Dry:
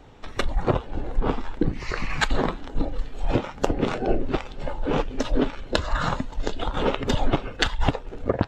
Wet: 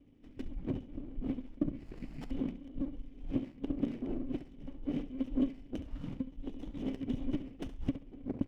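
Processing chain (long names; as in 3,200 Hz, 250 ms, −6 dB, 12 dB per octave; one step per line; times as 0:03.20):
formant resonators in series i
flutter between parallel walls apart 11.8 metres, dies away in 0.32 s
windowed peak hold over 17 samples
level −3.5 dB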